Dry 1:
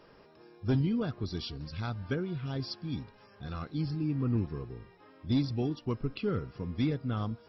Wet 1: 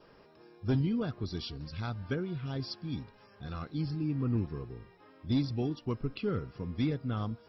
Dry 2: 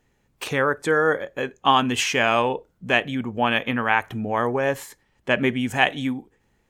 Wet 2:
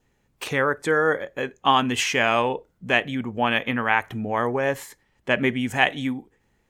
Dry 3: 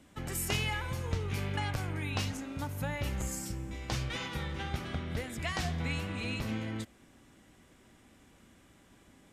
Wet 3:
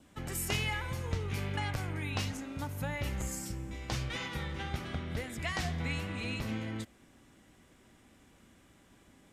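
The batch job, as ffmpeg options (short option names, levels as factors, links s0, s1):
-af "adynamicequalizer=threshold=0.00447:dfrequency=2000:dqfactor=7.2:tfrequency=2000:tqfactor=7.2:attack=5:release=100:ratio=0.375:range=2:mode=boostabove:tftype=bell,volume=0.891"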